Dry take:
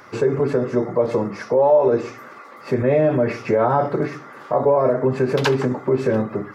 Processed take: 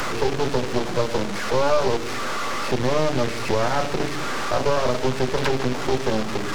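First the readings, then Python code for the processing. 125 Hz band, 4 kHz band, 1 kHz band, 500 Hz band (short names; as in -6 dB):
-3.0 dB, n/a, -1.0 dB, -5.5 dB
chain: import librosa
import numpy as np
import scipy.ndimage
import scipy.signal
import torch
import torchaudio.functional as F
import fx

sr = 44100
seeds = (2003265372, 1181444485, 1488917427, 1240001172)

y = fx.delta_mod(x, sr, bps=32000, step_db=-18.5)
y = np.maximum(y, 0.0)
y = fx.band_squash(y, sr, depth_pct=40)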